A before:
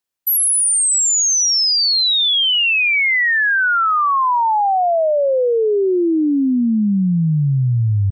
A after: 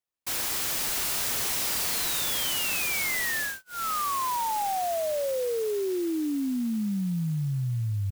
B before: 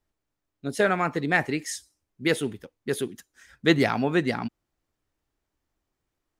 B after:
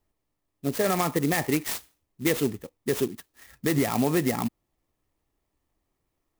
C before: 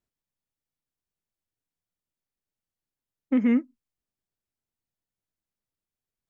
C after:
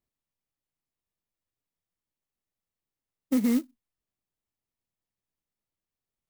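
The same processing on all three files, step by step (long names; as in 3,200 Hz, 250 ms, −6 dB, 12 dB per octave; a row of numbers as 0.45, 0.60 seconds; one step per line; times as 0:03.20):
brickwall limiter −17 dBFS
Butterworth band-reject 1,500 Hz, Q 4.9
converter with an unsteady clock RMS 0.065 ms
loudness normalisation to −27 LKFS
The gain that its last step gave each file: −8.0, +3.5, 0.0 decibels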